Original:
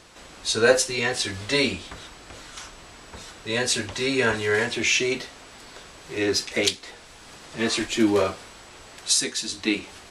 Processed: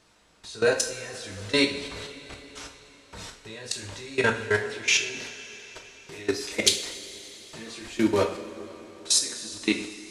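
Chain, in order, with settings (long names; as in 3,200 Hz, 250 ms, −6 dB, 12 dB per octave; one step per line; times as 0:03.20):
output level in coarse steps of 21 dB
0:06.12–0:06.87: high-shelf EQ 4,900 Hz +9.5 dB
coupled-rooms reverb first 0.44 s, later 4.1 s, from −16 dB, DRR 3 dB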